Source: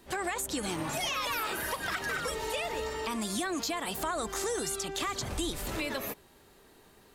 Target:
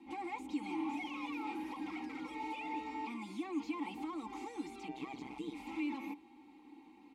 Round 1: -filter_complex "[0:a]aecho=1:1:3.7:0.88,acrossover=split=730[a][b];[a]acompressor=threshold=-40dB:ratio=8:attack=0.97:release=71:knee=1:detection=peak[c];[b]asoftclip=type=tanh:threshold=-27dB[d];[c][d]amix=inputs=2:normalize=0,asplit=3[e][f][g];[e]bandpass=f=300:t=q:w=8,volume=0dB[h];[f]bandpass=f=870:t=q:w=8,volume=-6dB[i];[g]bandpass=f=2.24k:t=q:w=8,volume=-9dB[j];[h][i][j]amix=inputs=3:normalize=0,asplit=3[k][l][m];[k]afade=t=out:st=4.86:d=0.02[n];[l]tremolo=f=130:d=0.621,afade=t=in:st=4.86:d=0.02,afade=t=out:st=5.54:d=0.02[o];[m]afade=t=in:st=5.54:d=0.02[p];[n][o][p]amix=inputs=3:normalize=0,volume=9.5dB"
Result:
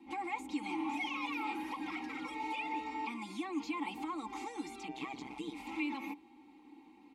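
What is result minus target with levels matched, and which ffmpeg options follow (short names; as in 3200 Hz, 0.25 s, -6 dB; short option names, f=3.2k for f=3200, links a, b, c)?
soft clip: distortion -10 dB
-filter_complex "[0:a]aecho=1:1:3.7:0.88,acrossover=split=730[a][b];[a]acompressor=threshold=-40dB:ratio=8:attack=0.97:release=71:knee=1:detection=peak[c];[b]asoftclip=type=tanh:threshold=-38.5dB[d];[c][d]amix=inputs=2:normalize=0,asplit=3[e][f][g];[e]bandpass=f=300:t=q:w=8,volume=0dB[h];[f]bandpass=f=870:t=q:w=8,volume=-6dB[i];[g]bandpass=f=2.24k:t=q:w=8,volume=-9dB[j];[h][i][j]amix=inputs=3:normalize=0,asplit=3[k][l][m];[k]afade=t=out:st=4.86:d=0.02[n];[l]tremolo=f=130:d=0.621,afade=t=in:st=4.86:d=0.02,afade=t=out:st=5.54:d=0.02[o];[m]afade=t=in:st=5.54:d=0.02[p];[n][o][p]amix=inputs=3:normalize=0,volume=9.5dB"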